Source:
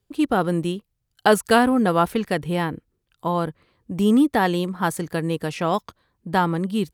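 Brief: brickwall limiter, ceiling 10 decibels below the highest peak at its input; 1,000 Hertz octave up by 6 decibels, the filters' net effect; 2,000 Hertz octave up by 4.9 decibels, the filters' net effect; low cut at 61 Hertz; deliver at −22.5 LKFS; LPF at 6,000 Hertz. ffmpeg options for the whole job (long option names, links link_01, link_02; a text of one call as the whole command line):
ffmpeg -i in.wav -af "highpass=61,lowpass=6000,equalizer=frequency=1000:width_type=o:gain=7,equalizer=frequency=2000:width_type=o:gain=3.5,volume=-1dB,alimiter=limit=-9.5dB:level=0:latency=1" out.wav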